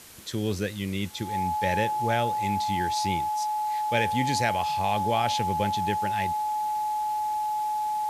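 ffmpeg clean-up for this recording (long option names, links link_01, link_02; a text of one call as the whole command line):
ffmpeg -i in.wav -af "adeclick=threshold=4,bandreject=frequency=850:width=30,afwtdn=0.0045" out.wav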